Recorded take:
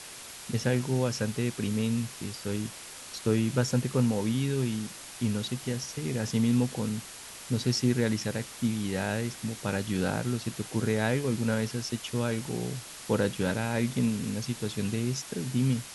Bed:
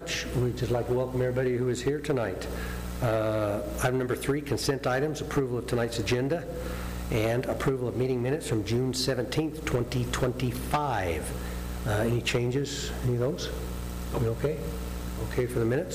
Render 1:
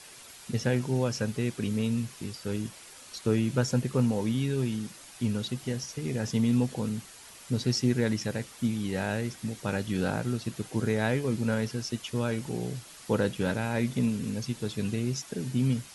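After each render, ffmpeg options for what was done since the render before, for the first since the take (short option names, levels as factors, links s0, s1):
-af "afftdn=nr=7:nf=-45"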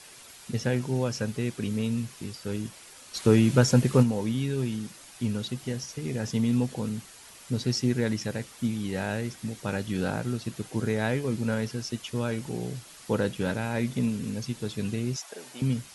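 -filter_complex "[0:a]asplit=3[s0][s1][s2];[s0]afade=t=out:st=3.14:d=0.02[s3];[s1]acontrast=67,afade=t=in:st=3.14:d=0.02,afade=t=out:st=4.02:d=0.02[s4];[s2]afade=t=in:st=4.02:d=0.02[s5];[s3][s4][s5]amix=inputs=3:normalize=0,asettb=1/sr,asplit=3[s6][s7][s8];[s6]atrim=end=15.164[s9];[s7]atrim=start=15.16:end=15.62,asetpts=PTS-STARTPTS,afade=t=in:d=0.004:c=qsin,afade=t=out:st=0.456:d=0.004:c=qsin,highpass=f=670:t=q:w=1.7[s10];[s8]atrim=start=15.616[s11];[s9][s10]acrossfade=d=0.004:c1=hsin:c2=qsin[s12];[s12][s11]acrossfade=d=0.004:c1=qsin:c2=hsin"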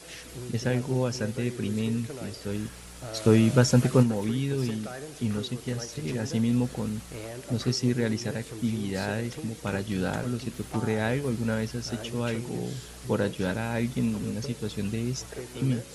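-filter_complex "[1:a]volume=0.237[s0];[0:a][s0]amix=inputs=2:normalize=0"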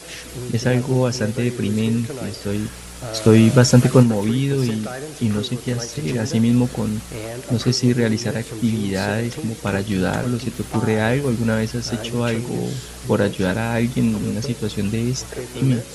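-af "volume=2.66,alimiter=limit=0.891:level=0:latency=1"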